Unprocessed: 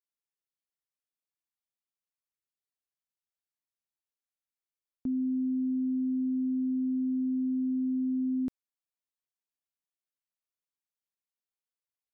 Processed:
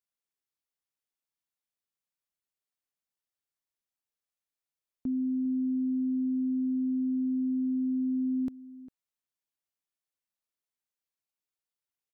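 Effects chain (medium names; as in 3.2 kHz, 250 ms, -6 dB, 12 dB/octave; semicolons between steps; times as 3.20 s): echo from a far wall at 69 m, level -17 dB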